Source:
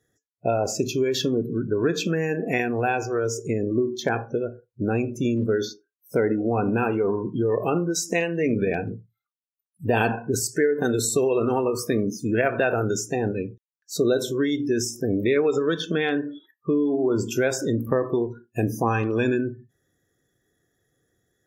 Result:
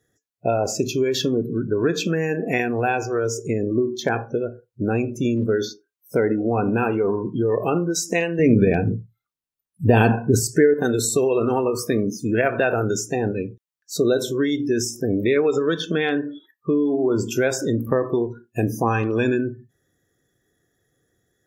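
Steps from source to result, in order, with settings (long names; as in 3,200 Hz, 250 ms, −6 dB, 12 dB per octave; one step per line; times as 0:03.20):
0:08.39–0:10.74: low-shelf EQ 310 Hz +10 dB
level +2 dB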